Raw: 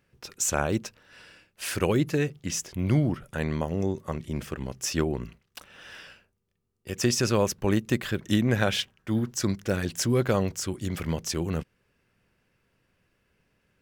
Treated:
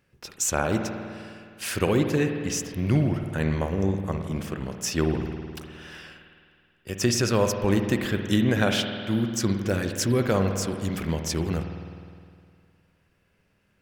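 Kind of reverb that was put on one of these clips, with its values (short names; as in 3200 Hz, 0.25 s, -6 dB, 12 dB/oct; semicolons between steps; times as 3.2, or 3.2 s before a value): spring tank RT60 2.2 s, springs 51 ms, chirp 35 ms, DRR 5 dB; gain +1 dB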